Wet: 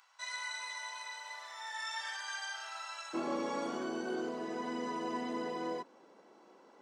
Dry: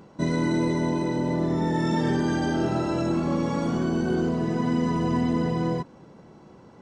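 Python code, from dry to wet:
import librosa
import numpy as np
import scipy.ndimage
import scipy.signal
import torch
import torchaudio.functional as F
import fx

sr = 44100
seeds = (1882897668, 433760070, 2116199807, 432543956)

y = fx.bessel_highpass(x, sr, hz=fx.steps((0.0, 1600.0), (3.13, 420.0)), order=6)
y = fx.rider(y, sr, range_db=3, speed_s=2.0)
y = y * 10.0 ** (-4.5 / 20.0)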